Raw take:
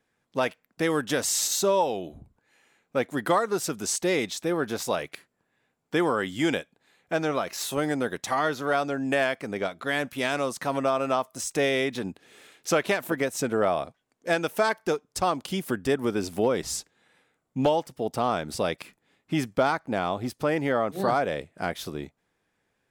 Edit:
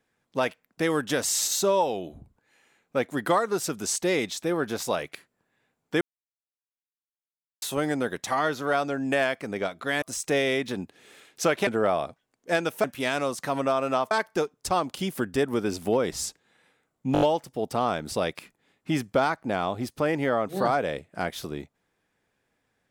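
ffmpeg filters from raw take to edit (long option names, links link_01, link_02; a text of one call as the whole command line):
ffmpeg -i in.wav -filter_complex "[0:a]asplit=11[link_01][link_02][link_03][link_04][link_05][link_06][link_07][link_08][link_09][link_10][link_11];[link_01]atrim=end=6.01,asetpts=PTS-STARTPTS,afade=type=out:start_time=6.006:duration=0.004:curve=hsin[link_12];[link_02]atrim=start=6.01:end=7.62,asetpts=PTS-STARTPTS,volume=0[link_13];[link_03]atrim=start=7.62:end=10.022,asetpts=PTS-STARTPTS,afade=type=in:duration=0.004:curve=hsin[link_14];[link_04]atrim=start=11.288:end=12.942[link_15];[link_05]atrim=start=13.448:end=14.622[link_16];[link_06]atrim=start=10.018:end=11.292[link_17];[link_07]atrim=start=14.618:end=17.662[link_18];[link_08]atrim=start=17.638:end=17.662[link_19];[link_09]atrim=start=17.638:end=17.662[link_20];[link_10]atrim=start=17.638:end=17.662[link_21];[link_11]atrim=start=17.638[link_22];[link_12][link_13][link_14]concat=n=3:v=0:a=1[link_23];[link_23][link_15]acrossfade=duration=0.004:curve1=hsin:curve2=hsin[link_24];[link_24][link_16]acrossfade=duration=0.004:curve1=hsin:curve2=hsin[link_25];[link_25][link_17]acrossfade=duration=0.004:curve1=hsin:curve2=hsin[link_26];[link_26][link_18]acrossfade=duration=0.004:curve1=hsin:curve2=hsin[link_27];[link_27][link_19]acrossfade=duration=0.004:curve1=hsin:curve2=hsin[link_28];[link_28][link_20]acrossfade=duration=0.004:curve1=hsin:curve2=hsin[link_29];[link_29][link_21]acrossfade=duration=0.004:curve1=hsin:curve2=hsin[link_30];[link_30][link_22]acrossfade=duration=0.004:curve1=hsin:curve2=hsin" out.wav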